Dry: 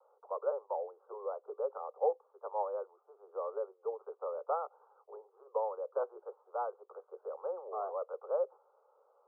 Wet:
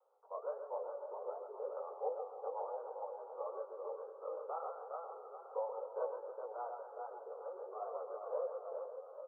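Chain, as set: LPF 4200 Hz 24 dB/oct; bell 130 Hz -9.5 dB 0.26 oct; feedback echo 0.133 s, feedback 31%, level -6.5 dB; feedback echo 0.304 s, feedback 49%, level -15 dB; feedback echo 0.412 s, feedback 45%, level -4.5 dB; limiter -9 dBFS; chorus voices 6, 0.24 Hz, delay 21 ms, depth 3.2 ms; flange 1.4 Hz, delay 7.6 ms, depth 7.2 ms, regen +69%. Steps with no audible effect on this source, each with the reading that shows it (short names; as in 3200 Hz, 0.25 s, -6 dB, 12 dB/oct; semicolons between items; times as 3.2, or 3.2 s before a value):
LPF 4200 Hz: input band ends at 1400 Hz; bell 130 Hz: input band starts at 340 Hz; limiter -9 dBFS: input peak -19.0 dBFS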